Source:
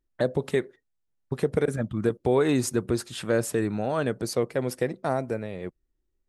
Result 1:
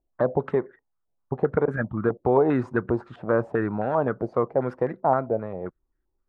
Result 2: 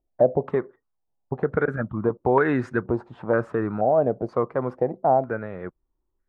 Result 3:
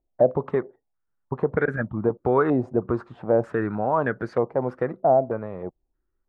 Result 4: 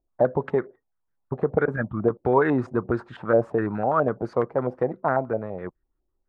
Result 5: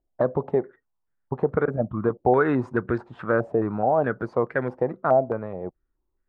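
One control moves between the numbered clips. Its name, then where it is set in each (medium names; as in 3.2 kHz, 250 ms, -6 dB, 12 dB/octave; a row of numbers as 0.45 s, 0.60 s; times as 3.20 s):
step-sequenced low-pass, rate: 7.6 Hz, 2.1 Hz, 3.2 Hz, 12 Hz, 4.7 Hz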